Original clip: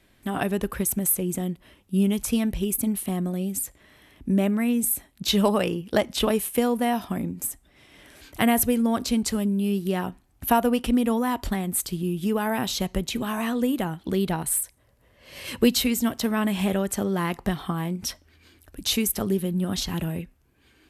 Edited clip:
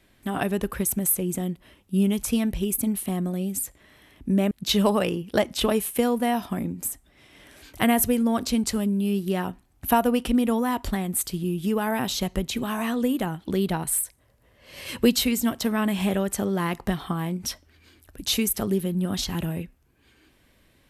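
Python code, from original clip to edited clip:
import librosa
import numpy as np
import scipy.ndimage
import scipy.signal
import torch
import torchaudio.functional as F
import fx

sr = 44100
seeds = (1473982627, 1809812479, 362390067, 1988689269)

y = fx.edit(x, sr, fx.cut(start_s=4.51, length_s=0.59), tone=tone)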